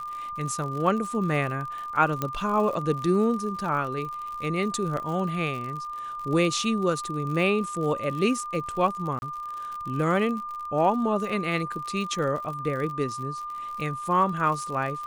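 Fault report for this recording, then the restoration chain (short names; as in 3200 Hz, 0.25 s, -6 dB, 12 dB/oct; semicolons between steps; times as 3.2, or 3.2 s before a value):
crackle 59/s -33 dBFS
tone 1200 Hz -32 dBFS
2.22 pop -13 dBFS
4.97 gap 2.4 ms
9.19–9.22 gap 31 ms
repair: de-click; notch 1200 Hz, Q 30; interpolate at 4.97, 2.4 ms; interpolate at 9.19, 31 ms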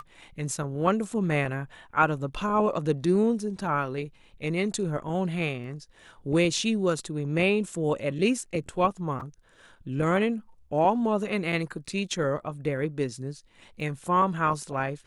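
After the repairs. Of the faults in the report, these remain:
2.22 pop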